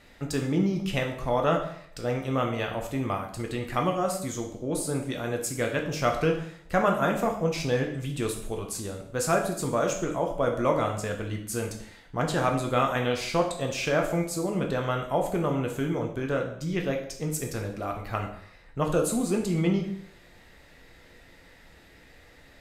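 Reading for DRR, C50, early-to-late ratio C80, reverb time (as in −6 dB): 1.5 dB, 7.5 dB, 11.0 dB, 0.65 s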